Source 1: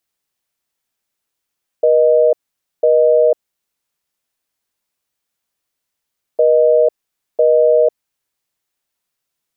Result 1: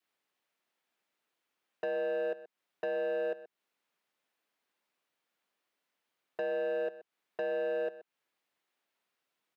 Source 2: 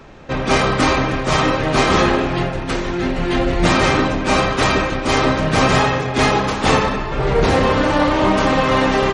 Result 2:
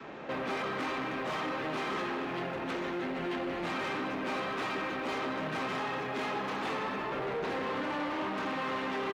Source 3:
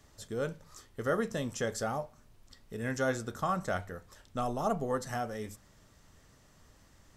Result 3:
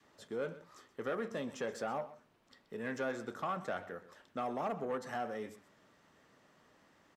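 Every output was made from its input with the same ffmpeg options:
-filter_complex "[0:a]highpass=f=130:p=1,asplit=2[a][b];[b]aeval=exprs='val(0)*gte(abs(val(0)),0.0447)':c=same,volume=-9dB[c];[a][c]amix=inputs=2:normalize=0,adynamicequalizer=threshold=0.0631:dfrequency=580:dqfactor=2.1:tfrequency=580:tqfactor=2.1:attack=5:release=100:ratio=0.375:range=3:mode=cutabove:tftype=bell,acompressor=threshold=-27dB:ratio=4,asoftclip=type=tanh:threshold=-30.5dB,acrossover=split=170 3600:gain=0.178 1 0.224[d][e][f];[d][e][f]amix=inputs=3:normalize=0,aecho=1:1:127:0.158"

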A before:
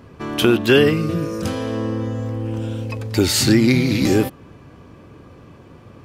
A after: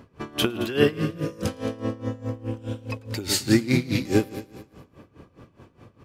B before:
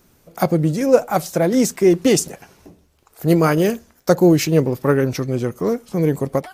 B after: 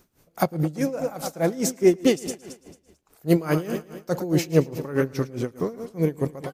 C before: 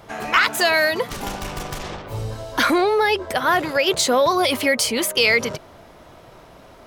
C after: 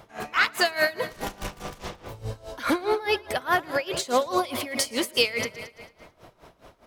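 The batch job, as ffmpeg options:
-filter_complex "[0:a]asplit=2[a][b];[b]aecho=0:1:111|222|333|444|555|666|777:0.251|0.148|0.0874|0.0516|0.0304|0.018|0.0106[c];[a][c]amix=inputs=2:normalize=0,aeval=exprs='val(0)*pow(10,-19*(0.5-0.5*cos(2*PI*4.8*n/s))/20)':c=same,volume=-2dB"

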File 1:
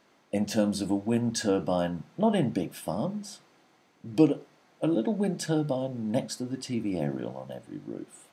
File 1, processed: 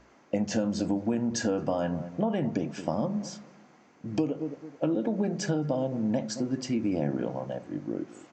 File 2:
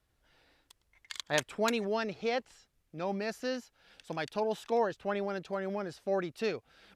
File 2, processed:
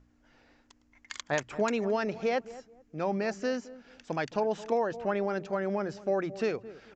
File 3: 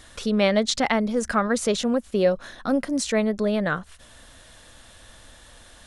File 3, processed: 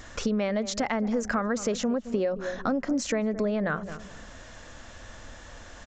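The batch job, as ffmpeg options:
-filter_complex "[0:a]asplit=2[a][b];[b]adelay=217,lowpass=f=820:p=1,volume=-16.5dB,asplit=2[c][d];[d]adelay=217,lowpass=f=820:p=1,volume=0.28,asplit=2[e][f];[f]adelay=217,lowpass=f=820:p=1,volume=0.28[g];[a][c][e][g]amix=inputs=4:normalize=0,asplit=2[h][i];[i]alimiter=limit=-19dB:level=0:latency=1:release=31,volume=0dB[j];[h][j]amix=inputs=2:normalize=0,acompressor=threshold=-22dB:ratio=12,aeval=exprs='val(0)+0.00158*(sin(2*PI*60*n/s)+sin(2*PI*2*60*n/s)/2+sin(2*PI*3*60*n/s)/3+sin(2*PI*4*60*n/s)/4+sin(2*PI*5*60*n/s)/5)':c=same,equalizer=f=3.7k:w=1.8:g=-9,aresample=16000,aresample=44100,bandreject=f=60:t=h:w=6,bandreject=f=120:t=h:w=6,bandreject=f=180:t=h:w=6,volume=-1dB"

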